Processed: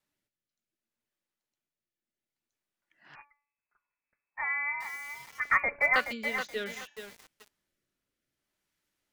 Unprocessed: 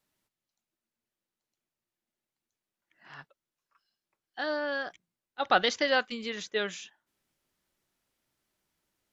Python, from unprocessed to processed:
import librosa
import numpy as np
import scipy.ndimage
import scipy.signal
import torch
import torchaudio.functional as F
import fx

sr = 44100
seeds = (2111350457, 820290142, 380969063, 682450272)

y = fx.comb_fb(x, sr, f0_hz=290.0, decay_s=0.51, harmonics='all', damping=0.0, mix_pct=60)
y = fx.rotary(y, sr, hz=0.65)
y = fx.freq_invert(y, sr, carrier_hz=2600, at=(3.15, 5.96))
y = fx.peak_eq(y, sr, hz=1900.0, db=3.0, octaves=1.3)
y = fx.echo_crushed(y, sr, ms=425, feedback_pct=35, bits=8, wet_db=-7)
y = F.gain(torch.from_numpy(y), 5.5).numpy()